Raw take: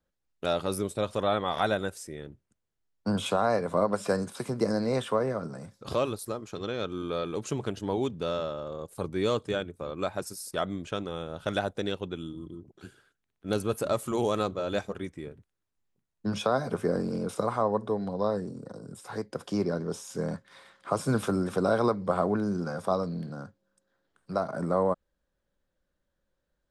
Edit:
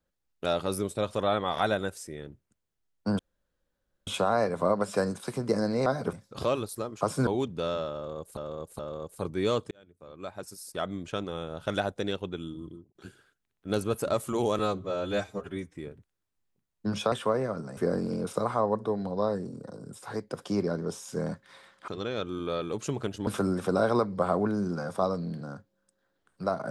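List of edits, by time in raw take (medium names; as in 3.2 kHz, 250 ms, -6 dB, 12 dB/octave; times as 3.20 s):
3.19 s: insert room tone 0.88 s
4.98–5.63 s: swap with 16.52–16.79 s
6.51–7.90 s: swap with 20.90–21.16 s
8.58–9.00 s: loop, 3 plays
9.50–10.95 s: fade in
12.46–12.74 s: fade out
14.38–15.16 s: stretch 1.5×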